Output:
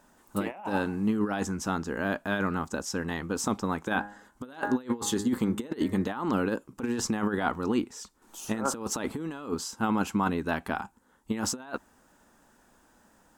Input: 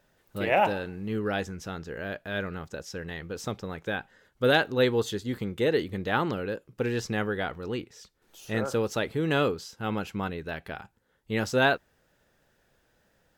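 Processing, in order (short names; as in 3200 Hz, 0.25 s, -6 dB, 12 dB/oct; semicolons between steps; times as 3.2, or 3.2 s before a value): 3.9–6.09 de-hum 102.5 Hz, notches 21; negative-ratio compressor -31 dBFS, ratio -0.5; ten-band EQ 125 Hz -8 dB, 250 Hz +11 dB, 500 Hz -6 dB, 1000 Hz +11 dB, 2000 Hz -4 dB, 4000 Hz -4 dB, 8000 Hz +9 dB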